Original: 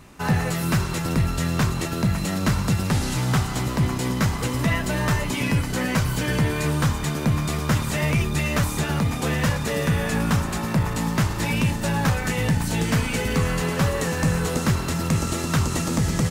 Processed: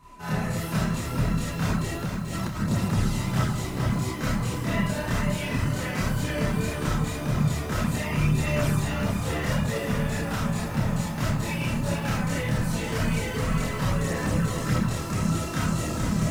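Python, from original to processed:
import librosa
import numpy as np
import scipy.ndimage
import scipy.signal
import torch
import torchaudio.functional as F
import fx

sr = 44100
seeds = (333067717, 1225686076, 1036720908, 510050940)

y = fx.dereverb_blind(x, sr, rt60_s=1.0)
y = y + 10.0 ** (-42.0 / 20.0) * np.sin(2.0 * np.pi * 1000.0 * np.arange(len(y)) / sr)
y = fx.rev_freeverb(y, sr, rt60_s=0.86, hf_ratio=0.3, predelay_ms=5, drr_db=-4.0)
y = fx.chorus_voices(y, sr, voices=2, hz=0.88, base_ms=28, depth_ms=2.9, mix_pct=60)
y = fx.over_compress(y, sr, threshold_db=-27.0, ratio=-1.0, at=(2.04, 2.59), fade=0.02)
y = fx.echo_crushed(y, sr, ms=436, feedback_pct=35, bits=7, wet_db=-6.5)
y = y * librosa.db_to_amplitude(-5.5)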